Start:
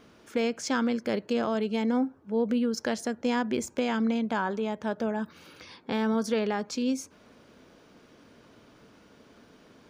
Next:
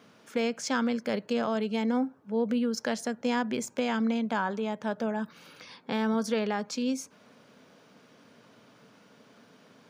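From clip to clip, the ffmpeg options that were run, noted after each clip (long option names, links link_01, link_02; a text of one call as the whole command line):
ffmpeg -i in.wav -af "highpass=frequency=120:width=0.5412,highpass=frequency=120:width=1.3066,equalizer=frequency=340:width_type=o:width=0.41:gain=-8" out.wav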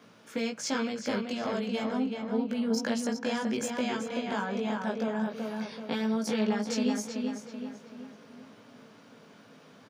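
ffmpeg -i in.wav -filter_complex "[0:a]acrossover=split=160|3000[link_01][link_02][link_03];[link_02]acompressor=threshold=-30dB:ratio=6[link_04];[link_01][link_04][link_03]amix=inputs=3:normalize=0,flanger=delay=17.5:depth=2.5:speed=0.35,asplit=2[link_05][link_06];[link_06]adelay=381,lowpass=frequency=3500:poles=1,volume=-4dB,asplit=2[link_07][link_08];[link_08]adelay=381,lowpass=frequency=3500:poles=1,volume=0.49,asplit=2[link_09][link_10];[link_10]adelay=381,lowpass=frequency=3500:poles=1,volume=0.49,asplit=2[link_11][link_12];[link_12]adelay=381,lowpass=frequency=3500:poles=1,volume=0.49,asplit=2[link_13][link_14];[link_14]adelay=381,lowpass=frequency=3500:poles=1,volume=0.49,asplit=2[link_15][link_16];[link_16]adelay=381,lowpass=frequency=3500:poles=1,volume=0.49[link_17];[link_07][link_09][link_11][link_13][link_15][link_17]amix=inputs=6:normalize=0[link_18];[link_05][link_18]amix=inputs=2:normalize=0,volume=4dB" out.wav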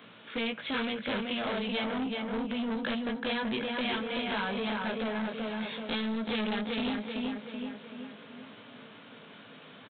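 ffmpeg -i in.wav -af "aresample=8000,asoftclip=type=tanh:threshold=-31dB,aresample=44100,crystalizer=i=5.5:c=0,volume=1.5dB" out.wav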